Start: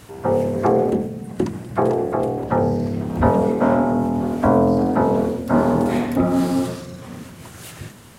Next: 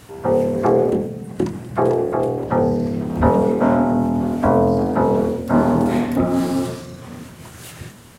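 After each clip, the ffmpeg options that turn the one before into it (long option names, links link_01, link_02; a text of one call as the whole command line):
ffmpeg -i in.wav -filter_complex "[0:a]asplit=2[link_01][link_02];[link_02]adelay=25,volume=-10.5dB[link_03];[link_01][link_03]amix=inputs=2:normalize=0" out.wav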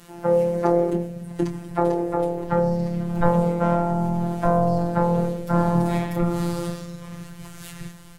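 ffmpeg -i in.wav -af "afftfilt=real='hypot(re,im)*cos(PI*b)':imag='0':win_size=1024:overlap=0.75,asubboost=boost=5:cutoff=120" out.wav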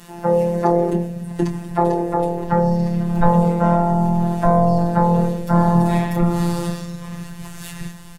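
ffmpeg -i in.wav -filter_complex "[0:a]aecho=1:1:4.7:0.33,asplit=2[link_01][link_02];[link_02]acontrast=56,volume=-1.5dB[link_03];[link_01][link_03]amix=inputs=2:normalize=0,volume=-4dB" out.wav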